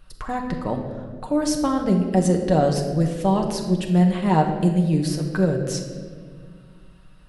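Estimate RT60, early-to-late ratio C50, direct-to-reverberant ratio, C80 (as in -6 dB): 1.8 s, 6.0 dB, 1.5 dB, 7.5 dB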